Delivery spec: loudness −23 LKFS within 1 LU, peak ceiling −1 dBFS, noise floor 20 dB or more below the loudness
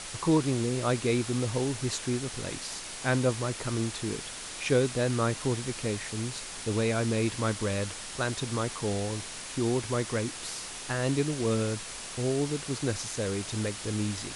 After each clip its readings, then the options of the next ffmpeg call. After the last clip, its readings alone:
background noise floor −41 dBFS; target noise floor −51 dBFS; integrated loudness −30.5 LKFS; sample peak −13.0 dBFS; target loudness −23.0 LKFS
→ -af "afftdn=noise_reduction=10:noise_floor=-41"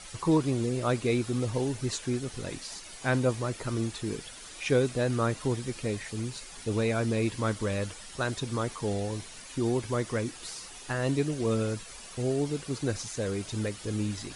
background noise floor −46 dBFS; target noise floor −51 dBFS
→ -af "afftdn=noise_reduction=6:noise_floor=-46"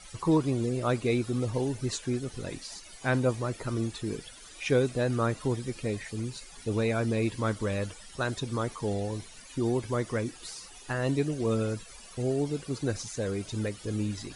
background noise floor −49 dBFS; target noise floor −51 dBFS
→ -af "afftdn=noise_reduction=6:noise_floor=-49"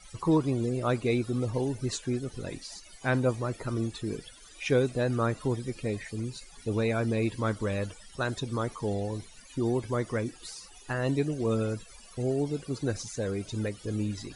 background noise floor −52 dBFS; integrated loudness −31.0 LKFS; sample peak −13.5 dBFS; target loudness −23.0 LKFS
→ -af "volume=8dB"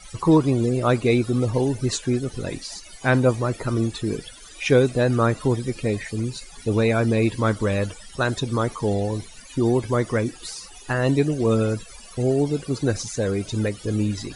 integrated loudness −23.0 LKFS; sample peak −5.5 dBFS; background noise floor −44 dBFS

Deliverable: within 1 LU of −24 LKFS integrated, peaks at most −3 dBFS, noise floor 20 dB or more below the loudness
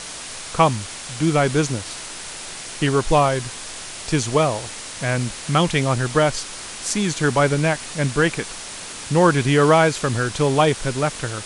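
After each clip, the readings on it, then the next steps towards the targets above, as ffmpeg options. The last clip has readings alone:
background noise floor −34 dBFS; target noise floor −40 dBFS; integrated loudness −20.0 LKFS; sample peak −3.5 dBFS; target loudness −24.0 LKFS
→ -af "afftdn=noise_reduction=6:noise_floor=-34"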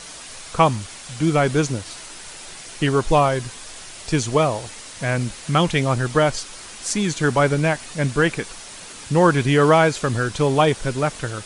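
background noise floor −38 dBFS; target noise floor −40 dBFS
→ -af "afftdn=noise_reduction=6:noise_floor=-38"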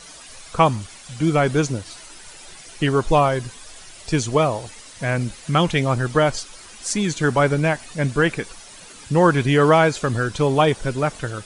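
background noise floor −42 dBFS; integrated loudness −20.0 LKFS; sample peak −4.0 dBFS; target loudness −24.0 LKFS
→ -af "volume=-4dB"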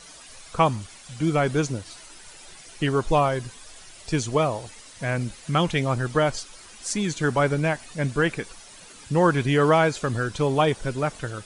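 integrated loudness −24.0 LKFS; sample peak −8.0 dBFS; background noise floor −46 dBFS

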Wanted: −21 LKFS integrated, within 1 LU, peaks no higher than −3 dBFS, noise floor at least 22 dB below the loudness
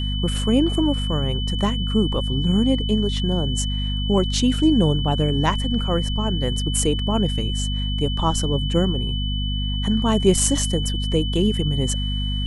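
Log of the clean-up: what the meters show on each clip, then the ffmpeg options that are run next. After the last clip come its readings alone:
mains hum 50 Hz; hum harmonics up to 250 Hz; level of the hum −22 dBFS; interfering tone 3,000 Hz; level of the tone −29 dBFS; integrated loudness −21.5 LKFS; sample peak −2.0 dBFS; target loudness −21.0 LKFS
→ -af "bandreject=frequency=50:width_type=h:width=4,bandreject=frequency=100:width_type=h:width=4,bandreject=frequency=150:width_type=h:width=4,bandreject=frequency=200:width_type=h:width=4,bandreject=frequency=250:width_type=h:width=4"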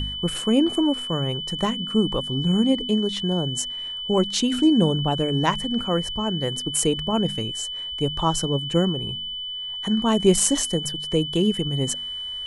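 mains hum none found; interfering tone 3,000 Hz; level of the tone −29 dBFS
→ -af "bandreject=frequency=3000:width=30"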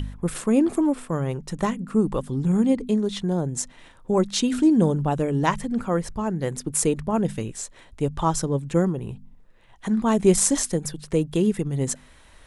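interfering tone none found; integrated loudness −23.5 LKFS; sample peak −3.0 dBFS; target loudness −21.0 LKFS
→ -af "volume=2.5dB,alimiter=limit=-3dB:level=0:latency=1"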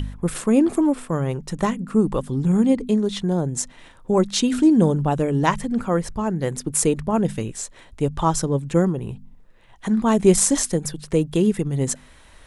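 integrated loudness −21.0 LKFS; sample peak −3.0 dBFS; background noise floor −49 dBFS

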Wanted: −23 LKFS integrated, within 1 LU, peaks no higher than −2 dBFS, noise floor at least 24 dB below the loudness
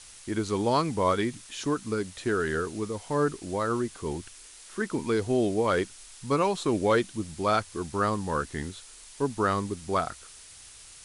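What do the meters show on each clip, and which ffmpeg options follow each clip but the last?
background noise floor −49 dBFS; target noise floor −53 dBFS; integrated loudness −28.5 LKFS; sample peak −12.0 dBFS; target loudness −23.0 LKFS
→ -af "afftdn=noise_reduction=6:noise_floor=-49"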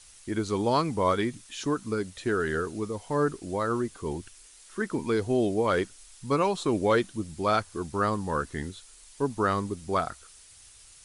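background noise floor −53 dBFS; integrated loudness −28.5 LKFS; sample peak −12.0 dBFS; target loudness −23.0 LKFS
→ -af "volume=5.5dB"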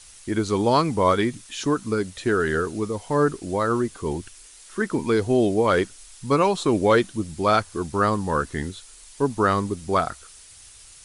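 integrated loudness −23.0 LKFS; sample peak −6.5 dBFS; background noise floor −47 dBFS

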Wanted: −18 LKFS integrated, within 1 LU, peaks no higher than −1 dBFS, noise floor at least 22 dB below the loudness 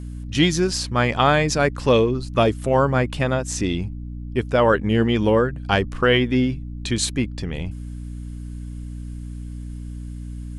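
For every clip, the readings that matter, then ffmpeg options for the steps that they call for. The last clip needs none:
mains hum 60 Hz; hum harmonics up to 300 Hz; level of the hum −29 dBFS; integrated loudness −20.5 LKFS; sample peak −3.5 dBFS; target loudness −18.0 LKFS
→ -af "bandreject=frequency=60:width_type=h:width=4,bandreject=frequency=120:width_type=h:width=4,bandreject=frequency=180:width_type=h:width=4,bandreject=frequency=240:width_type=h:width=4,bandreject=frequency=300:width_type=h:width=4"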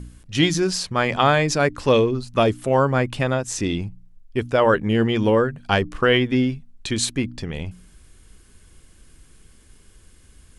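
mains hum none found; integrated loudness −21.0 LKFS; sample peak −3.0 dBFS; target loudness −18.0 LKFS
→ -af "volume=3dB,alimiter=limit=-1dB:level=0:latency=1"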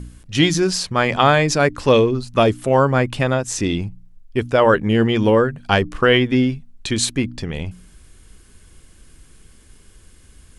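integrated loudness −18.0 LKFS; sample peak −1.0 dBFS; background noise floor −48 dBFS

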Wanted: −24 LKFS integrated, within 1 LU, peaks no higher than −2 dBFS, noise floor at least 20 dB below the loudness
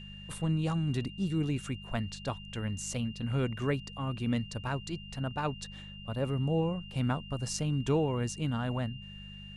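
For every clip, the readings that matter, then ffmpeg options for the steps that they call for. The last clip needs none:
mains hum 50 Hz; hum harmonics up to 200 Hz; level of the hum −47 dBFS; interfering tone 2,800 Hz; level of the tone −48 dBFS; integrated loudness −33.5 LKFS; sample peak −17.0 dBFS; target loudness −24.0 LKFS
→ -af "bandreject=frequency=50:width_type=h:width=4,bandreject=frequency=100:width_type=h:width=4,bandreject=frequency=150:width_type=h:width=4,bandreject=frequency=200:width_type=h:width=4"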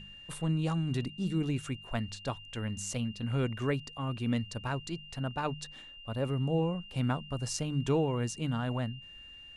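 mains hum none found; interfering tone 2,800 Hz; level of the tone −48 dBFS
→ -af "bandreject=frequency=2800:width=30"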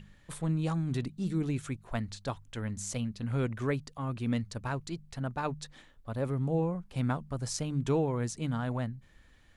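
interfering tone none found; integrated loudness −34.0 LKFS; sample peak −17.0 dBFS; target loudness −24.0 LKFS
→ -af "volume=10dB"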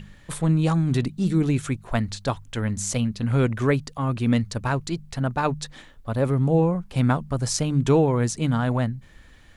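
integrated loudness −24.0 LKFS; sample peak −7.0 dBFS; background noise floor −49 dBFS

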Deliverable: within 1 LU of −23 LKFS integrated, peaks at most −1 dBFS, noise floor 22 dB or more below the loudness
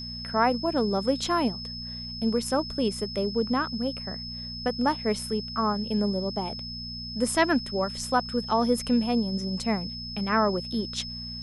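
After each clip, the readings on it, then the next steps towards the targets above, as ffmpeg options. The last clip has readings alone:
mains hum 60 Hz; hum harmonics up to 240 Hz; level of the hum −39 dBFS; interfering tone 5,200 Hz; level of the tone −36 dBFS; integrated loudness −27.5 LKFS; sample peak −9.5 dBFS; target loudness −23.0 LKFS
→ -af "bandreject=frequency=60:width_type=h:width=4,bandreject=frequency=120:width_type=h:width=4,bandreject=frequency=180:width_type=h:width=4,bandreject=frequency=240:width_type=h:width=4"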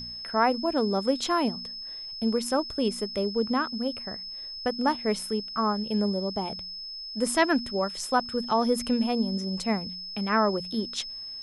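mains hum none found; interfering tone 5,200 Hz; level of the tone −36 dBFS
→ -af "bandreject=frequency=5200:width=30"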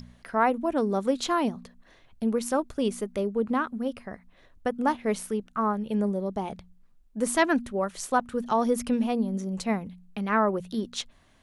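interfering tone none found; integrated loudness −28.0 LKFS; sample peak −10.0 dBFS; target loudness −23.0 LKFS
→ -af "volume=5dB"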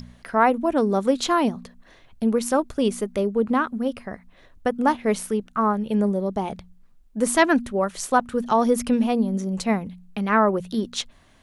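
integrated loudness −23.0 LKFS; sample peak −5.0 dBFS; background noise floor −54 dBFS

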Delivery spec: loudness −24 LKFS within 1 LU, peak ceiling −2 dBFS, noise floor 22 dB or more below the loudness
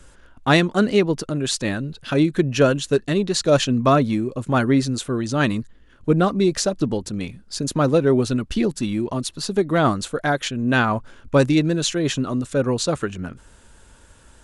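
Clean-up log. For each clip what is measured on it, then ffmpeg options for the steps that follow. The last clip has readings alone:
integrated loudness −21.0 LKFS; sample peak −4.0 dBFS; target loudness −24.0 LKFS
→ -af "volume=-3dB"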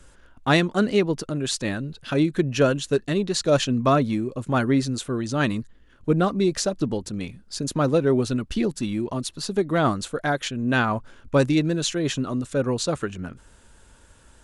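integrated loudness −24.0 LKFS; sample peak −7.0 dBFS; background noise floor −53 dBFS

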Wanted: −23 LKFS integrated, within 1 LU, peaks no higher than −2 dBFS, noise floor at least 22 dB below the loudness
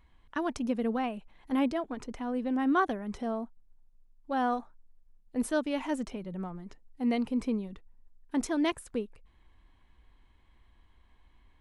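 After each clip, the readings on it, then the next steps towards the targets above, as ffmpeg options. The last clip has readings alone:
integrated loudness −32.5 LKFS; sample peak −17.0 dBFS; target loudness −23.0 LKFS
→ -af "volume=9.5dB"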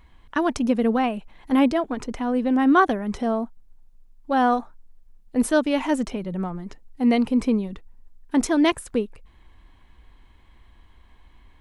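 integrated loudness −23.0 LKFS; sample peak −7.5 dBFS; background noise floor −54 dBFS

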